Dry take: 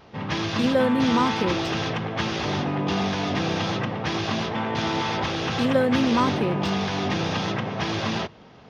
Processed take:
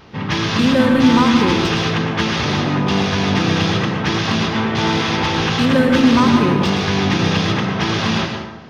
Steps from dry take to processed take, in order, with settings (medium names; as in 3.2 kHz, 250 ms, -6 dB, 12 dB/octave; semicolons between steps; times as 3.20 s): peaking EQ 650 Hz -6.5 dB 0.92 oct; in parallel at -3.5 dB: hard clipper -20 dBFS, distortion -15 dB; on the sum: plate-style reverb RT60 1 s, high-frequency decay 0.6×, pre-delay 95 ms, DRR 4 dB; trim +3.5 dB